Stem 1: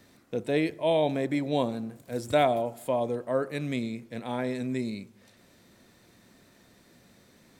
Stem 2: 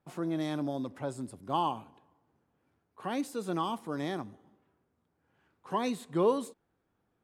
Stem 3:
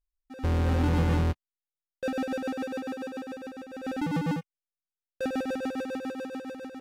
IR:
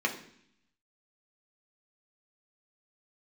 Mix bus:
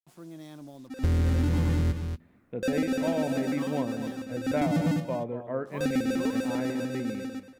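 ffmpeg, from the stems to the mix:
-filter_complex "[0:a]lowpass=frequency=2400:width=0.5412,lowpass=frequency=2400:width=1.3066,adelay=2200,volume=-5dB,asplit=2[link_01][link_02];[link_02]volume=-11.5dB[link_03];[1:a]acrusher=bits=7:mix=0:aa=0.5,volume=-13dB[link_04];[2:a]equalizer=frequency=810:width=1.5:gain=-6.5,adelay=600,volume=3dB,asplit=3[link_05][link_06][link_07];[link_06]volume=-22.5dB[link_08];[link_07]volume=-13dB[link_09];[3:a]atrim=start_sample=2205[link_10];[link_08][link_10]afir=irnorm=-1:irlink=0[link_11];[link_03][link_09]amix=inputs=2:normalize=0,aecho=0:1:234:1[link_12];[link_01][link_04][link_05][link_11][link_12]amix=inputs=5:normalize=0,bass=frequency=250:gain=4,treble=frequency=4000:gain=6,acompressor=threshold=-22dB:ratio=6"

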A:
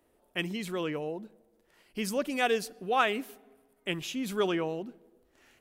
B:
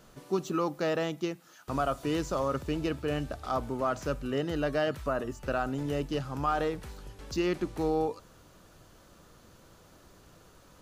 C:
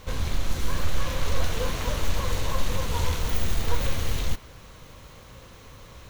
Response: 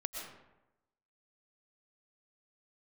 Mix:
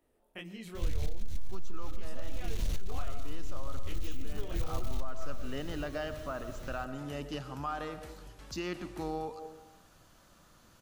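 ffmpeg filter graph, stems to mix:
-filter_complex "[0:a]acompressor=threshold=-37dB:ratio=4,flanger=delay=18:depth=6:speed=2.1,volume=-4.5dB,asplit=3[link_01][link_02][link_03];[link_02]volume=-9.5dB[link_04];[1:a]lowshelf=frequency=120:gain=-12,adelay=1200,volume=-4.5dB,asplit=2[link_05][link_06];[link_06]volume=-9.5dB[link_07];[2:a]equalizer=frequency=1100:width=0.92:gain=-14,acompressor=threshold=-26dB:ratio=4,asoftclip=type=tanh:threshold=-28.5dB,adelay=750,volume=-2dB,asplit=2[link_08][link_09];[link_09]volume=-12dB[link_10];[link_03]apad=whole_len=530061[link_11];[link_05][link_11]sidechaincompress=threshold=-54dB:ratio=8:attack=16:release=139[link_12];[link_12][link_08]amix=inputs=2:normalize=0,equalizer=frequency=430:width=2.6:gain=-12.5,alimiter=level_in=6.5dB:limit=-24dB:level=0:latency=1:release=475,volume=-6.5dB,volume=0dB[link_13];[3:a]atrim=start_sample=2205[link_14];[link_04][link_07][link_10]amix=inputs=3:normalize=0[link_15];[link_15][link_14]afir=irnorm=-1:irlink=0[link_16];[link_01][link_13][link_16]amix=inputs=3:normalize=0,lowshelf=frequency=63:gain=11.5,acompressor=threshold=-23dB:ratio=12"

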